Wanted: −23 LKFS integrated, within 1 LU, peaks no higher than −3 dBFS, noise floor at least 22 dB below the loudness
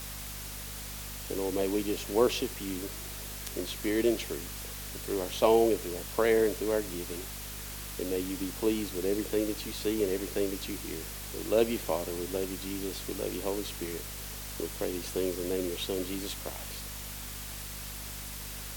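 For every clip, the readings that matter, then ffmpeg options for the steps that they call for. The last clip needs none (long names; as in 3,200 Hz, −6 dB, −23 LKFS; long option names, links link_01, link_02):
mains hum 50 Hz; hum harmonics up to 250 Hz; level of the hum −42 dBFS; background noise floor −41 dBFS; target noise floor −55 dBFS; integrated loudness −32.5 LKFS; sample peak −10.5 dBFS; target loudness −23.0 LKFS
→ -af "bandreject=frequency=50:width_type=h:width=6,bandreject=frequency=100:width_type=h:width=6,bandreject=frequency=150:width_type=h:width=6,bandreject=frequency=200:width_type=h:width=6,bandreject=frequency=250:width_type=h:width=6"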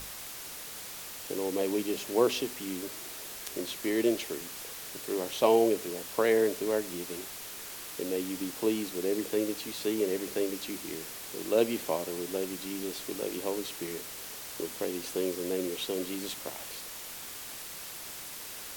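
mains hum none found; background noise floor −43 dBFS; target noise floor −55 dBFS
→ -af "afftdn=noise_reduction=12:noise_floor=-43"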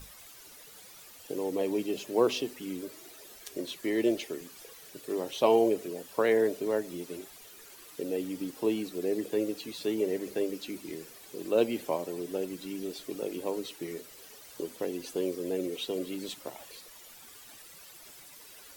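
background noise floor −51 dBFS; target noise floor −54 dBFS
→ -af "afftdn=noise_reduction=6:noise_floor=-51"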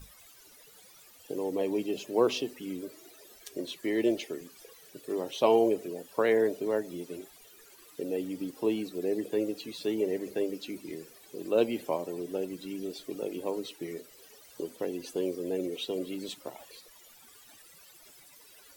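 background noise floor −56 dBFS; integrated loudness −32.0 LKFS; sample peak −11.0 dBFS; target loudness −23.0 LKFS
→ -af "volume=9dB,alimiter=limit=-3dB:level=0:latency=1"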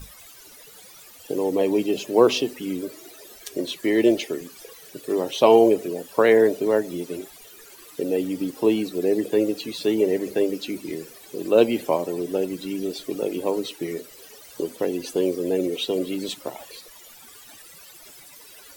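integrated loudness −23.0 LKFS; sample peak −3.0 dBFS; background noise floor −47 dBFS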